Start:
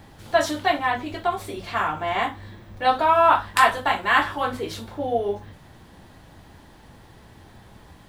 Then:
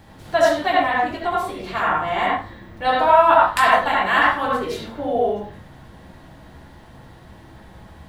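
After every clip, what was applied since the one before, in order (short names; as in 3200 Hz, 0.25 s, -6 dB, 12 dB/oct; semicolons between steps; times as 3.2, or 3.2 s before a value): reverb RT60 0.30 s, pre-delay 63 ms, DRR -3 dB; gain -1 dB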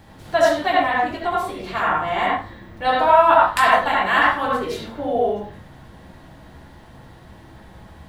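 nothing audible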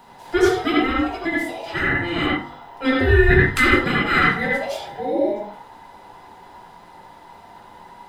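band inversion scrambler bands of 1000 Hz; de-hum 48.66 Hz, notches 28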